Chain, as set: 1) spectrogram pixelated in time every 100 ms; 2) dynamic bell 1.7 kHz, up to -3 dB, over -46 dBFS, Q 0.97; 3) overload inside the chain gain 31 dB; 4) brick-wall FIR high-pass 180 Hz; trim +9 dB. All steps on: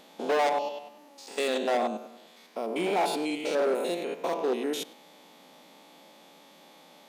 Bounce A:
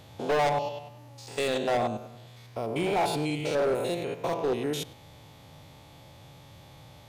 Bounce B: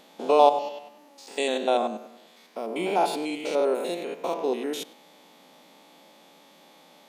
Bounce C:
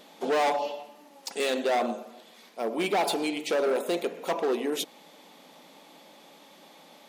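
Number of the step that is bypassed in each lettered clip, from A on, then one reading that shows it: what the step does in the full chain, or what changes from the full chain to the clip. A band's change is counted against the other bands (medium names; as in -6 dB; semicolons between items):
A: 4, 125 Hz band +15.5 dB; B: 3, distortion -6 dB; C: 1, 8 kHz band +2.0 dB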